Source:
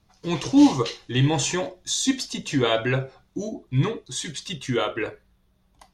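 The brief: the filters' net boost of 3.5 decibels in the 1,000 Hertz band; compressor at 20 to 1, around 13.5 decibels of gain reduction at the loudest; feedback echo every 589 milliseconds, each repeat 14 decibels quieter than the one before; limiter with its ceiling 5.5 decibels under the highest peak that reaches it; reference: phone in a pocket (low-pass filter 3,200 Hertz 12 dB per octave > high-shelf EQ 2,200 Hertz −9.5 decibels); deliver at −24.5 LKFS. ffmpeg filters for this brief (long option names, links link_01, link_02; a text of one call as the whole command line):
ffmpeg -i in.wav -af "equalizer=frequency=1000:width_type=o:gain=6.5,acompressor=threshold=-23dB:ratio=20,alimiter=limit=-19.5dB:level=0:latency=1,lowpass=3200,highshelf=frequency=2200:gain=-9.5,aecho=1:1:589|1178:0.2|0.0399,volume=8dB" out.wav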